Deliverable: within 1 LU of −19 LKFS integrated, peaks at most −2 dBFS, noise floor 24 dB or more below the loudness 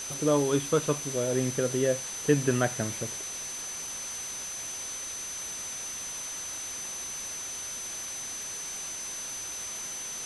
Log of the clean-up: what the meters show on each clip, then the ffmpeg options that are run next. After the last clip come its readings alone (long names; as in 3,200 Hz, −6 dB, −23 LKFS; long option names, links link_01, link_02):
interfering tone 6,100 Hz; level of the tone −36 dBFS; background noise floor −37 dBFS; target noise floor −55 dBFS; integrated loudness −31.0 LKFS; sample peak −10.0 dBFS; target loudness −19.0 LKFS
→ -af "bandreject=frequency=6100:width=30"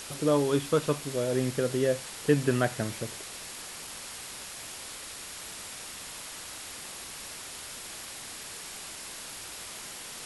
interfering tone none found; background noise floor −42 dBFS; target noise floor −57 dBFS
→ -af "afftdn=noise_reduction=15:noise_floor=-42"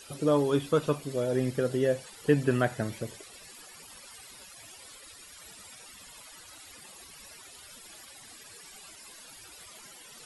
background noise floor −50 dBFS; target noise floor −53 dBFS
→ -af "afftdn=noise_reduction=6:noise_floor=-50"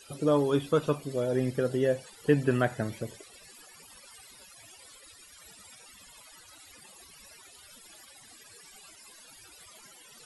background noise floor −54 dBFS; integrated loudness −28.5 LKFS; sample peak −10.5 dBFS; target loudness −19.0 LKFS
→ -af "volume=9.5dB,alimiter=limit=-2dB:level=0:latency=1"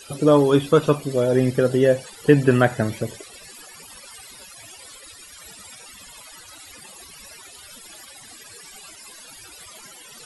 integrated loudness −19.0 LKFS; sample peak −2.0 dBFS; background noise floor −44 dBFS